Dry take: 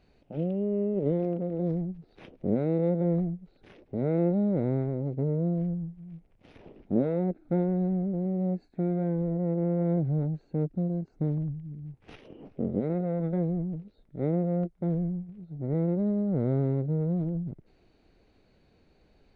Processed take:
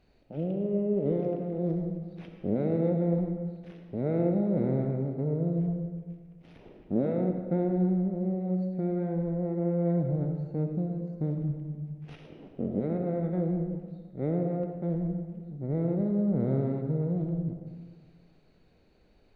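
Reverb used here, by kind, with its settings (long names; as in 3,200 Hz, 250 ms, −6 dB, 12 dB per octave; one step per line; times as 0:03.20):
comb and all-pass reverb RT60 1.6 s, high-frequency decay 0.75×, pre-delay 25 ms, DRR 4 dB
level −2 dB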